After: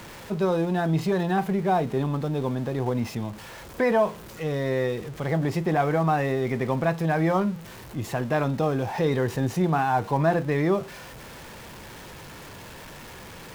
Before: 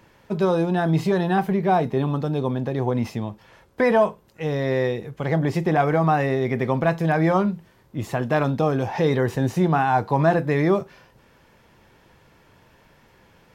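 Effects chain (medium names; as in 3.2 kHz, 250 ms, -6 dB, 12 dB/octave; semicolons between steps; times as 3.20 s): jump at every zero crossing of -33.5 dBFS; trim -4 dB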